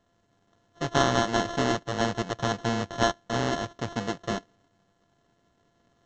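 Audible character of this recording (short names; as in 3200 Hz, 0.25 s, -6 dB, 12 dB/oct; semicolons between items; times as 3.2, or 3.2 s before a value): a buzz of ramps at a fixed pitch in blocks of 64 samples; tremolo saw up 0.64 Hz, depth 35%; aliases and images of a low sample rate 2400 Hz, jitter 0%; µ-law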